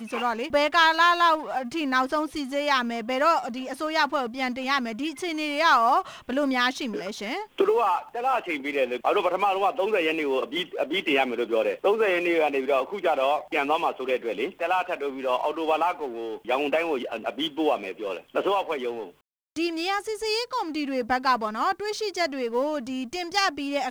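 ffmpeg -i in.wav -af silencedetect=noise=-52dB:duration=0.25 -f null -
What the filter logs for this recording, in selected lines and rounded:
silence_start: 19.15
silence_end: 19.56 | silence_duration: 0.42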